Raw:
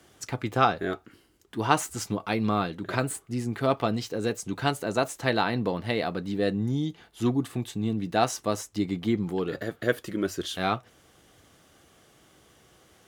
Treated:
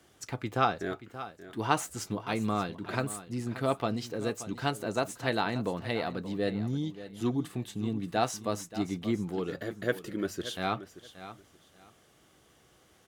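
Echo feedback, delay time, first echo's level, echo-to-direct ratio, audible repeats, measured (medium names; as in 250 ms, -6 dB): 21%, 579 ms, -14.0 dB, -14.0 dB, 2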